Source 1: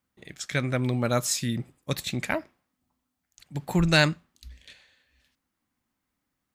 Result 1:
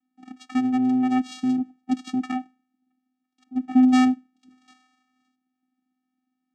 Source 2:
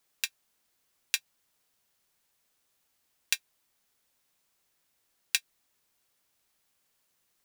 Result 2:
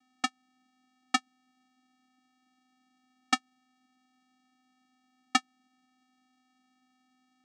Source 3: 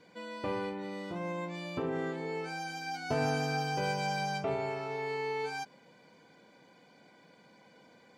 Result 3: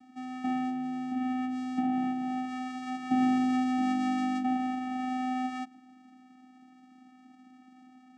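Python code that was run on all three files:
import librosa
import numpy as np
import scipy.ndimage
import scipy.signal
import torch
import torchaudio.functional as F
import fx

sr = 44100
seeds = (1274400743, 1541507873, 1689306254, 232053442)

y = scipy.ndimage.median_filter(x, 5, mode='constant')
y = fx.vocoder(y, sr, bands=4, carrier='square', carrier_hz=255.0)
y = y * librosa.db_to_amplitude(5.5)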